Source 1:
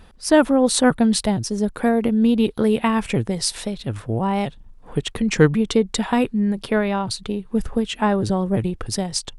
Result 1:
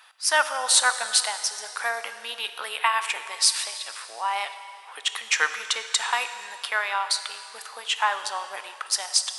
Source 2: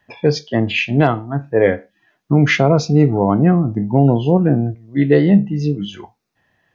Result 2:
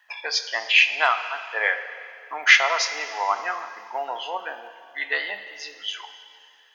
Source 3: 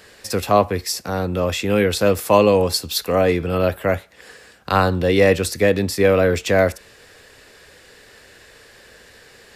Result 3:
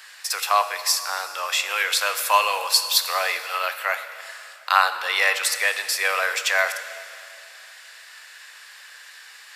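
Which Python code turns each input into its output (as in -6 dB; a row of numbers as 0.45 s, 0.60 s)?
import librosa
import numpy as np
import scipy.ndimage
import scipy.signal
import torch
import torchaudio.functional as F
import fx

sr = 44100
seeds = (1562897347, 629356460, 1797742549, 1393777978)

y = scipy.signal.sosfilt(scipy.signal.butter(4, 970.0, 'highpass', fs=sr, output='sos'), x)
y = fx.rev_plate(y, sr, seeds[0], rt60_s=2.5, hf_ratio=1.0, predelay_ms=0, drr_db=9.0)
y = y * librosa.db_to_amplitude(3.5)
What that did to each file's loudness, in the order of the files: -4.0 LU, -6.5 LU, -3.0 LU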